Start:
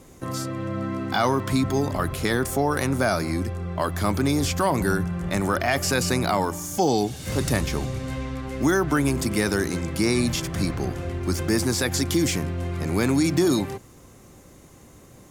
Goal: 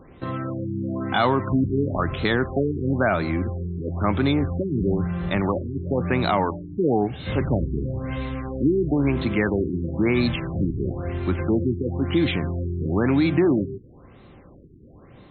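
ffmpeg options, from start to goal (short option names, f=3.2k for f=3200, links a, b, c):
-af "crystalizer=i=1.5:c=0,afftfilt=real='re*lt(b*sr/1024,420*pow(4300/420,0.5+0.5*sin(2*PI*1*pts/sr)))':imag='im*lt(b*sr/1024,420*pow(4300/420,0.5+0.5*sin(2*PI*1*pts/sr)))':win_size=1024:overlap=0.75,volume=1.5dB"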